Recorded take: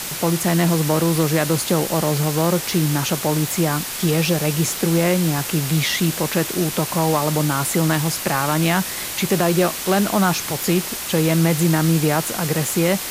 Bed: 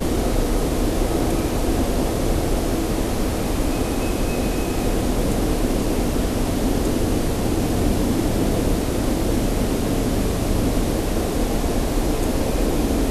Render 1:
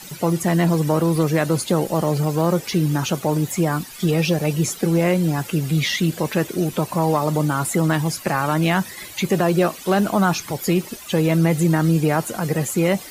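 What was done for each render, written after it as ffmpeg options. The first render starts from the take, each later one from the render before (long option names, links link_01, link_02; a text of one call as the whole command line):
ffmpeg -i in.wav -af "afftdn=noise_reduction=15:noise_floor=-28" out.wav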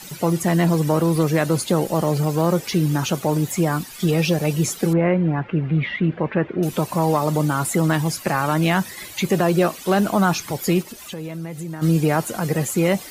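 ffmpeg -i in.wav -filter_complex "[0:a]asettb=1/sr,asplit=3[link_01][link_02][link_03];[link_01]atrim=end=4.934[link_04];[link_02]atrim=start=4.93:end=6.63,asetpts=PTS-STARTPTS,afade=type=in:duration=0.004:curve=qsin,afade=type=out:start_time=1.696:duration=0.004:curve=qsin,lowpass=frequency=2300:width=0.5412,lowpass=frequency=2300:width=1.3066[link_05];[link_03]atrim=start=6.626[link_06];[link_04][link_05]acrossfade=duration=0.004:curve1=hsin:curve2=qsin[link_07];[link_07][link_06]acrossfade=duration=0.004:curve1=qsin:curve2=hsin,asplit=3[link_08][link_09][link_10];[link_08]afade=type=out:start_time=10.82:duration=0.02[link_11];[link_09]acompressor=threshold=-34dB:ratio=2.5:attack=3.2:release=140:knee=1:detection=peak,afade=type=in:start_time=10.82:duration=0.02,afade=type=out:start_time=11.81:duration=0.02[link_12];[link_10]afade=type=in:start_time=11.81:duration=0.02[link_13];[link_11][link_12][link_13]amix=inputs=3:normalize=0" out.wav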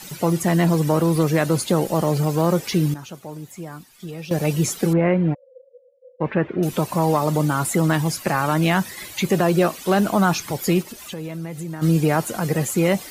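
ffmpeg -i in.wav -filter_complex "[0:a]asplit=3[link_01][link_02][link_03];[link_01]afade=type=out:start_time=5.33:duration=0.02[link_04];[link_02]asuperpass=centerf=520:order=12:qfactor=7.4,afade=type=in:start_time=5.33:duration=0.02,afade=type=out:start_time=6.2:duration=0.02[link_05];[link_03]afade=type=in:start_time=6.2:duration=0.02[link_06];[link_04][link_05][link_06]amix=inputs=3:normalize=0,asplit=3[link_07][link_08][link_09];[link_07]atrim=end=2.94,asetpts=PTS-STARTPTS,afade=type=out:start_time=2.8:duration=0.14:curve=log:silence=0.188365[link_10];[link_08]atrim=start=2.94:end=4.31,asetpts=PTS-STARTPTS,volume=-14.5dB[link_11];[link_09]atrim=start=4.31,asetpts=PTS-STARTPTS,afade=type=in:duration=0.14:curve=log:silence=0.188365[link_12];[link_10][link_11][link_12]concat=n=3:v=0:a=1" out.wav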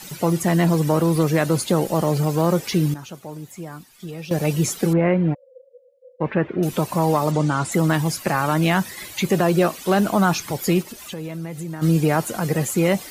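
ffmpeg -i in.wav -filter_complex "[0:a]asettb=1/sr,asplit=3[link_01][link_02][link_03];[link_01]atrim=end=7.314[link_04];[link_02]atrim=start=7.31:end=7.72,asetpts=PTS-STARTPTS,afade=type=in:duration=0.004:curve=qsin,afade=type=out:start_time=0.406:duration=0.004:curve=qsin,lowpass=frequency=7800:width=0.5412,lowpass=frequency=7800:width=1.3066[link_05];[link_03]atrim=start=7.716[link_06];[link_04][link_05]acrossfade=duration=0.004:curve1=hsin:curve2=qsin[link_07];[link_07][link_06]acrossfade=duration=0.004:curve1=qsin:curve2=hsin" out.wav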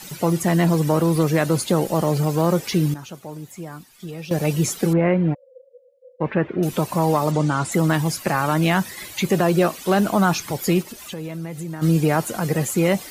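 ffmpeg -i in.wav -af anull out.wav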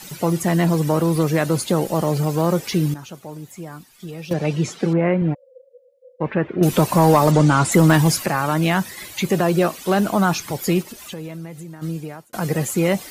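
ffmpeg -i in.wav -filter_complex "[0:a]asettb=1/sr,asplit=3[link_01][link_02][link_03];[link_01]atrim=end=4.334[link_04];[link_02]atrim=start=4.33:end=5.22,asetpts=PTS-STARTPTS,afade=type=in:duration=0.004:curve=qsin,afade=type=out:start_time=0.886:duration=0.004:curve=qsin,highpass=100,lowpass=4700[link_05];[link_03]atrim=start=5.216[link_06];[link_04][link_05]acrossfade=duration=0.004:curve1=hsin:curve2=qsin[link_07];[link_07][link_06]acrossfade=duration=0.004:curve1=qsin:curve2=hsin,asettb=1/sr,asplit=3[link_08][link_09][link_10];[link_08]atrim=end=6.614[link_11];[link_09]atrim=start=6.61:end=8.26,asetpts=PTS-STARTPTS,afade=type=in:duration=0.004:curve=qsin,afade=type=out:start_time=1.646:duration=0.004:curve=qsin,acontrast=68[link_12];[link_10]atrim=start=8.256[link_13];[link_11][link_12]acrossfade=duration=0.004:curve1=hsin:curve2=qsin[link_14];[link_14][link_13]acrossfade=duration=0.004:curve1=qsin:curve2=hsin,asplit=2[link_15][link_16];[link_15]atrim=end=12.33,asetpts=PTS-STARTPTS,afade=type=out:start_time=11.09:duration=1.24[link_17];[link_16]atrim=start=12.33,asetpts=PTS-STARTPTS,afade=type=in:duration=0.004:curve=hsin[link_18];[link_17][link_18]concat=n=2:v=0:a=1" out.wav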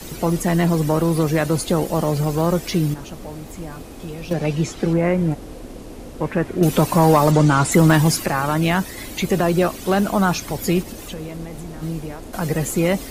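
ffmpeg -i in.wav -i bed.wav -filter_complex "[1:a]volume=-15.5dB[link_01];[0:a][link_01]amix=inputs=2:normalize=0" out.wav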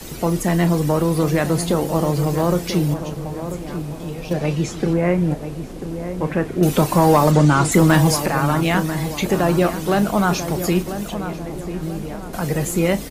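ffmpeg -i in.wav -filter_complex "[0:a]asplit=2[link_01][link_02];[link_02]adelay=34,volume=-12.5dB[link_03];[link_01][link_03]amix=inputs=2:normalize=0,asplit=2[link_04][link_05];[link_05]adelay=991,lowpass=frequency=1400:poles=1,volume=-9.5dB,asplit=2[link_06][link_07];[link_07]adelay=991,lowpass=frequency=1400:poles=1,volume=0.46,asplit=2[link_08][link_09];[link_09]adelay=991,lowpass=frequency=1400:poles=1,volume=0.46,asplit=2[link_10][link_11];[link_11]adelay=991,lowpass=frequency=1400:poles=1,volume=0.46,asplit=2[link_12][link_13];[link_13]adelay=991,lowpass=frequency=1400:poles=1,volume=0.46[link_14];[link_04][link_06][link_08][link_10][link_12][link_14]amix=inputs=6:normalize=0" out.wav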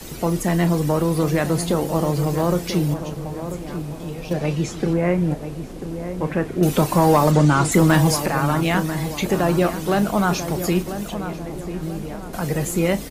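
ffmpeg -i in.wav -af "volume=-1.5dB" out.wav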